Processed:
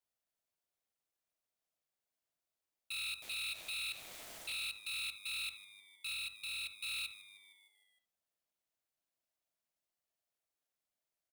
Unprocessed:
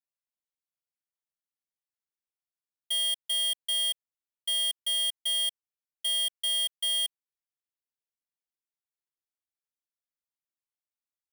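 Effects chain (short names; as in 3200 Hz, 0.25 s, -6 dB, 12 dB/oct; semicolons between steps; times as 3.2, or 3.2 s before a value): 3.22–4.63 zero-crossing step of -41.5 dBFS; low shelf 130 Hz +11 dB; in parallel at +0.5 dB: compressor, threshold -41 dBFS, peak gain reduction 12.5 dB; on the sum: limiter -30.5 dBFS, peak gain reduction 7.5 dB; hard clip -35.5 dBFS, distortion -21 dB; 6.13–6.79 fifteen-band EQ 1600 Hz -9 dB, 6300 Hz -4 dB, 16000 Hz -3 dB; frequency-shifting echo 0.154 s, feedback 61%, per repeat -100 Hz, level -16.5 dB; on a send at -7 dB: reverb, pre-delay 54 ms; on the sum: ring modulator 650 Hz; Doppler distortion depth 0.24 ms; gain -1.5 dB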